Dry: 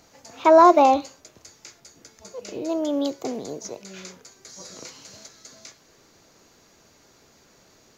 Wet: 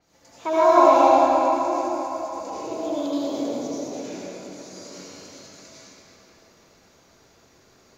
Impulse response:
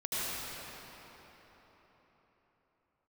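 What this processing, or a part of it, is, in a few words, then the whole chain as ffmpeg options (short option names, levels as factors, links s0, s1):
cathedral: -filter_complex "[1:a]atrim=start_sample=2205[s0];[0:a][s0]afir=irnorm=-1:irlink=0,adynamicequalizer=threshold=0.02:dfrequency=5800:dqfactor=0.7:tfrequency=5800:tqfactor=0.7:attack=5:release=100:ratio=0.375:range=2.5:mode=boostabove:tftype=highshelf,volume=0.447"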